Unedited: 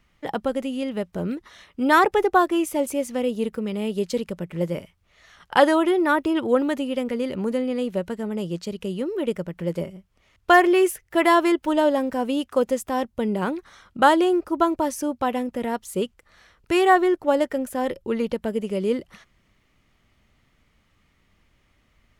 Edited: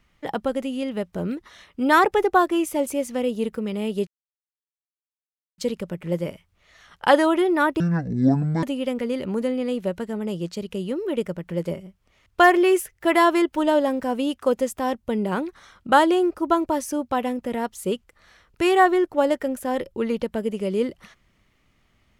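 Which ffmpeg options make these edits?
-filter_complex "[0:a]asplit=4[a][b][c][d];[a]atrim=end=4.07,asetpts=PTS-STARTPTS,afade=t=out:st=4.066:d=0.004:c=hsin,apad=pad_dur=1.51[e];[b]atrim=start=4.07:end=6.294,asetpts=PTS-STARTPTS,afade=t=in:d=0.004:c=hsin[f];[c]atrim=start=6.29:end=6.73,asetpts=PTS-STARTPTS,asetrate=23373,aresample=44100,atrim=end_sample=36611,asetpts=PTS-STARTPTS[g];[d]atrim=start=6.726[h];[e][f]concat=n=2:v=0:a=1[i];[i][g]acrossfade=d=0.004:c1=hsin:c2=hsin[j];[j][h]acrossfade=d=0.004:c1=hsin:c2=hsin"

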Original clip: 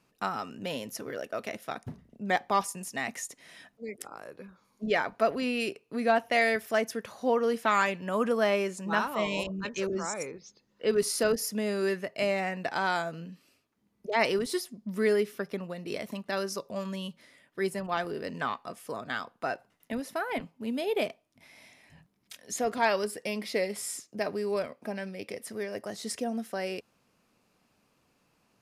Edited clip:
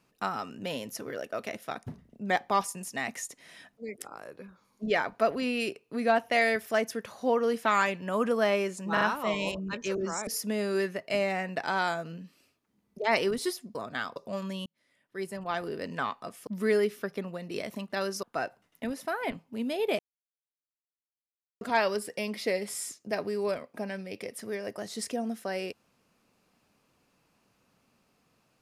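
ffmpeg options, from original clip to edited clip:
-filter_complex "[0:a]asplit=11[a][b][c][d][e][f][g][h][i][j][k];[a]atrim=end=8.972[l];[b]atrim=start=8.928:end=8.972[m];[c]atrim=start=8.928:end=10.192[n];[d]atrim=start=11.348:end=14.832[o];[e]atrim=start=18.898:end=19.312[p];[f]atrim=start=16.588:end=17.09,asetpts=PTS-STARTPTS,afade=t=out:st=0.498:d=0.004:c=hsin[q];[g]atrim=start=17.09:end=18.902,asetpts=PTS-STARTPTS,afade=t=in:d=1.06[r];[h]atrim=start=14.828:end=16.592[s];[i]atrim=start=19.308:end=21.07,asetpts=PTS-STARTPTS,afade=t=out:st=1.758:d=0.004:c=hsin[t];[j]atrim=start=21.07:end=22.69,asetpts=PTS-STARTPTS,volume=0[u];[k]atrim=start=22.69,asetpts=PTS-STARTPTS,afade=t=in:d=0.004:c=hsin[v];[l][m]acrossfade=d=0.004:c1=hsin:c2=hsin[w];[w][n]acrossfade=d=0.004:c1=hsin:c2=hsin[x];[x][o]acrossfade=d=0.004:c1=hsin:c2=hsin[y];[y][p]acrossfade=d=0.004:c1=hsin:c2=hsin[z];[q][r]concat=n=2:v=0:a=1[aa];[z][aa]acrossfade=d=0.004:c1=hsin:c2=hsin[ab];[ab][s]acrossfade=d=0.004:c1=hsin:c2=hsin[ac];[t][u][v]concat=n=3:v=0:a=1[ad];[ac][ad]acrossfade=d=0.004:c1=hsin:c2=hsin"

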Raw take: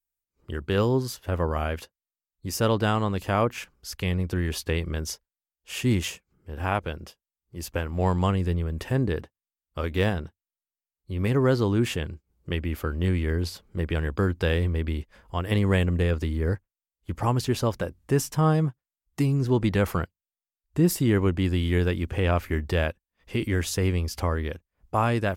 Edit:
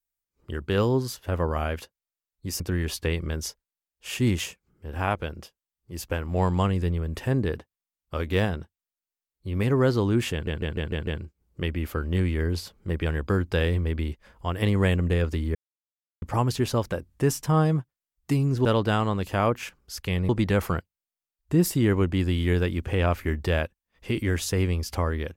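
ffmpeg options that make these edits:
-filter_complex "[0:a]asplit=11[a][b][c][d][e][f][g][h][i][j][k];[a]atrim=end=2.602[l];[b]atrim=start=4.238:end=12.112[m];[c]atrim=start=11.958:end=12.112[n];[d]atrim=start=11.958:end=12.112[o];[e]atrim=start=11.958:end=12.112[p];[f]atrim=start=11.958:end=12.112[q];[g]atrim=start=11.958:end=16.44,asetpts=PTS-STARTPTS,afade=t=out:st=4.478:d=0.004:c=hsin[r];[h]atrim=start=16.44:end=17.11,asetpts=PTS-STARTPTS,volume=0[s];[i]atrim=start=17.11:end=19.542,asetpts=PTS-STARTPTS,afade=t=in:d=0.004:c=hsin[t];[j]atrim=start=2.598:end=4.242[u];[k]atrim=start=19.538[v];[l][m]acrossfade=d=0.004:c1=hsin:c2=hsin[w];[w][n]acrossfade=d=0.004:c1=hsin:c2=hsin[x];[x][o]acrossfade=d=0.004:c1=hsin:c2=hsin[y];[y][p]acrossfade=d=0.004:c1=hsin:c2=hsin[z];[z][q]acrossfade=d=0.004:c1=hsin:c2=hsin[aa];[r][s][t]concat=n=3:v=0:a=1[ab];[aa][ab]acrossfade=d=0.004:c1=hsin:c2=hsin[ac];[ac][u]acrossfade=d=0.004:c1=hsin:c2=hsin[ad];[ad][v]acrossfade=d=0.004:c1=hsin:c2=hsin"

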